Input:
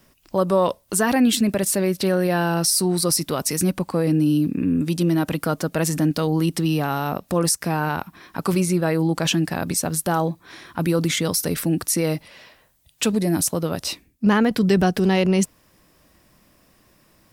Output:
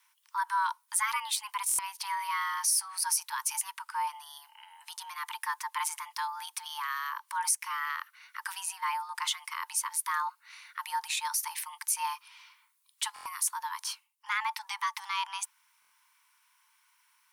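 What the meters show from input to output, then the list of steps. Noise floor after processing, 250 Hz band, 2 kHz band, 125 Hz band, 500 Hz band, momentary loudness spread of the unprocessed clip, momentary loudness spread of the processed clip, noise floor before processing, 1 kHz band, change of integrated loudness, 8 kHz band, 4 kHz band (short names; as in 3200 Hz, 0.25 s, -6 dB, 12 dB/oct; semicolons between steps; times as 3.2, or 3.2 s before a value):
-70 dBFS, under -40 dB, -6.0 dB, under -40 dB, under -40 dB, 7 LU, 11 LU, -59 dBFS, -4.0 dB, -11.0 dB, -6.0 dB, -8.5 dB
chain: rippled Chebyshev high-pass 470 Hz, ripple 3 dB; bell 9100 Hz +6.5 dB 0.27 oct; frequency shift +410 Hz; stuck buffer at 1.67/13.14/15.8, samples 1024, times 4; gain -7 dB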